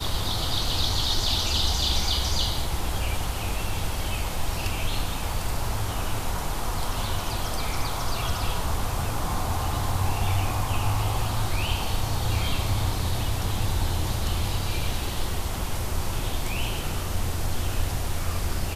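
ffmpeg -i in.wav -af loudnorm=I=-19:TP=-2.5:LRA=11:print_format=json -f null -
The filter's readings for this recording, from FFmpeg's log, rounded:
"input_i" : "-28.0",
"input_tp" : "-10.8",
"input_lra" : "4.2",
"input_thresh" : "-38.0",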